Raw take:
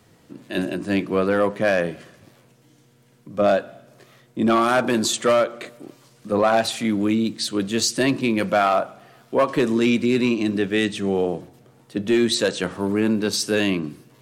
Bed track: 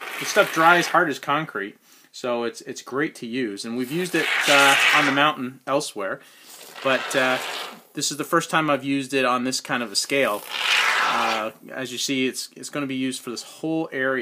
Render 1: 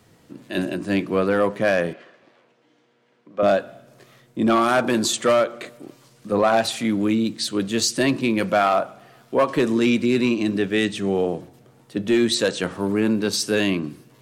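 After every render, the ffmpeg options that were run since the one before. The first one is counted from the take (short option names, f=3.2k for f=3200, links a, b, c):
-filter_complex "[0:a]asettb=1/sr,asplit=3[a][b][c];[a]atrim=end=1.934[d];[b]atrim=start=1.93:end=3.43,asetpts=PTS-STARTPTS,afade=t=in:d=0.004:c=qsin,afade=t=out:st=1.496:d=0.004:c=qsin,highpass=360,lowpass=3.2k[e];[c]atrim=start=3.426[f];[d][e]acrossfade=d=0.004:c1=hsin:c2=qsin[g];[g][f]acrossfade=d=0.004:c1=qsin:c2=hsin"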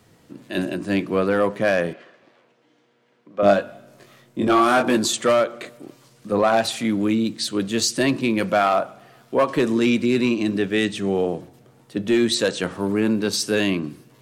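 -filter_complex "[0:a]asettb=1/sr,asplit=3[a][b][c];[a]atrim=end=3.434[d];[b]atrim=start=3.43:end=4.97,asetpts=PTS-STARTPTS,afade=t=in:d=0.004:c=qsin,afade=t=out:st=1.536:d=0.004:c=qsin,asplit=2[e][f];[f]adelay=20,volume=-4dB[g];[e][g]amix=inputs=2:normalize=0,atrim=end_sample=67914[h];[c]atrim=start=4.966[i];[d][h]acrossfade=d=0.004:c1=hsin:c2=qsin[j];[j][i]acrossfade=d=0.004:c1=qsin:c2=hsin"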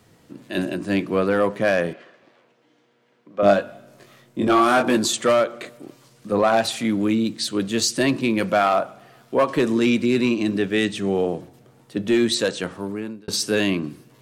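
-filter_complex "[0:a]asplit=2[a][b];[a]atrim=end=13.28,asetpts=PTS-STARTPTS,afade=t=out:st=12.07:d=1.21:c=qsin[c];[b]atrim=start=13.28,asetpts=PTS-STARTPTS,afade=t=in:d=0.004:c=hsin[d];[c][d]concat=n=2:v=0:a=1"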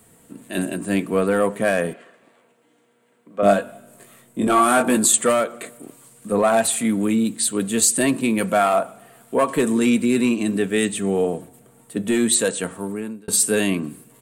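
-af "highshelf=f=6.8k:t=q:w=3:g=8.5,aecho=1:1:4.4:0.34"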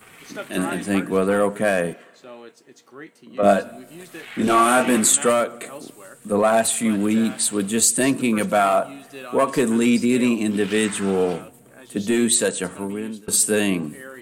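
-filter_complex "[1:a]volume=-16dB[a];[0:a][a]amix=inputs=2:normalize=0"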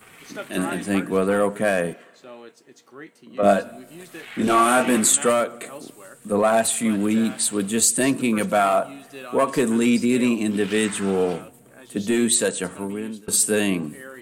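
-af "volume=-1dB"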